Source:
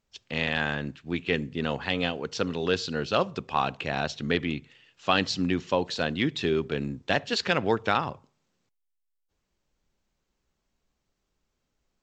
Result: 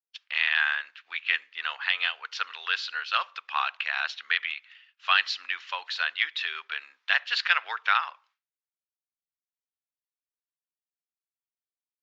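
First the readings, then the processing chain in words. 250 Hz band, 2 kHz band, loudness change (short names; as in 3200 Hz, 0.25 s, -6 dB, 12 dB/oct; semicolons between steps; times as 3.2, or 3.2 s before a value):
under -40 dB, +5.5 dB, +1.0 dB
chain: air absorption 240 m; expander -55 dBFS; HPF 1300 Hz 24 dB/oct; gain +8.5 dB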